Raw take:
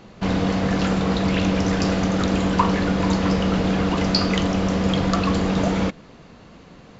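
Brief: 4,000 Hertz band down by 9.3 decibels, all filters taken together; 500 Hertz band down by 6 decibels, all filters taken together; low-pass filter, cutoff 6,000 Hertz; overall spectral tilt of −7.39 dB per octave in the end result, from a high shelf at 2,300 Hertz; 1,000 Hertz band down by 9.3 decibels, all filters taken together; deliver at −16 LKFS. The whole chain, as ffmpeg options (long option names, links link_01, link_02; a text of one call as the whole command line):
ffmpeg -i in.wav -af "lowpass=6000,equalizer=frequency=500:width_type=o:gain=-4.5,equalizer=frequency=1000:width_type=o:gain=-9,highshelf=frequency=2300:gain=-7,equalizer=frequency=4000:width_type=o:gain=-4,volume=7dB" out.wav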